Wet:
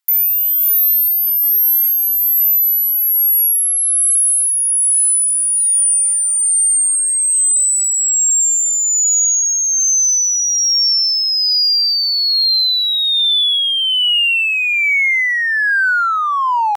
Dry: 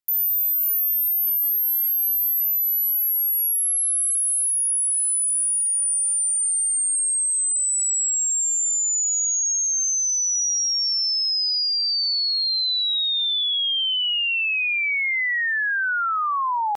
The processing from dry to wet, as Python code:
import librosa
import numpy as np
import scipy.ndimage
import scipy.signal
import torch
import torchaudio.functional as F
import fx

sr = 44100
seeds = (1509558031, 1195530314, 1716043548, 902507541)

p1 = x * (1.0 - 0.31 / 2.0 + 0.31 / 2.0 * np.cos(2.0 * np.pi * 1.2 * (np.arange(len(x)) / sr)))
p2 = 10.0 ** (-34.0 / 20.0) * np.tanh(p1 / 10.0 ** (-34.0 / 20.0))
p3 = p1 + (p2 * librosa.db_to_amplitude(-10.0))
p4 = scipy.signal.sosfilt(scipy.signal.butter(4, 770.0, 'highpass', fs=sr, output='sos'), p3)
y = p4 * librosa.db_to_amplitude(8.5)